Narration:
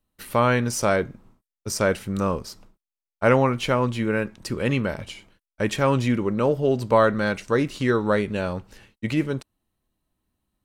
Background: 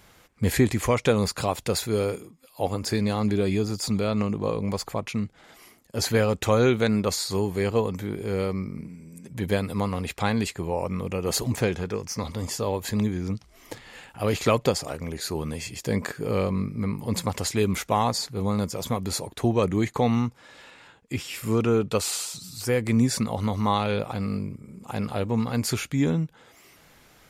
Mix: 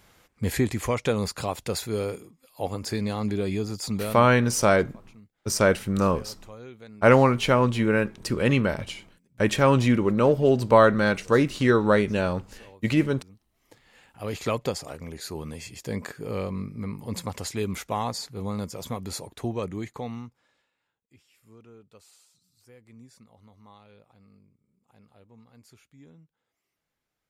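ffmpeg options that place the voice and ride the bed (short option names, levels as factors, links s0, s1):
-filter_complex "[0:a]adelay=3800,volume=1.19[s0];[1:a]volume=5.31,afade=t=out:st=4.01:d=0.29:silence=0.1,afade=t=in:st=13.54:d=0.98:silence=0.125893,afade=t=out:st=19.2:d=1.48:silence=0.0668344[s1];[s0][s1]amix=inputs=2:normalize=0"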